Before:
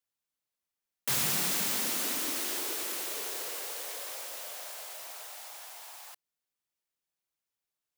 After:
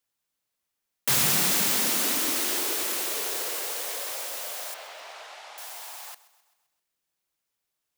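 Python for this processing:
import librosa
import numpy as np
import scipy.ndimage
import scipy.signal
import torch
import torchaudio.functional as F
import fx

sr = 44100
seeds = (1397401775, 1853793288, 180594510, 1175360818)

y = fx.bandpass_edges(x, sr, low_hz=370.0, high_hz=3700.0, at=(4.74, 5.58))
y = fx.echo_feedback(y, sr, ms=130, feedback_pct=54, wet_db=-18.5)
y = y * 10.0 ** (6.5 / 20.0)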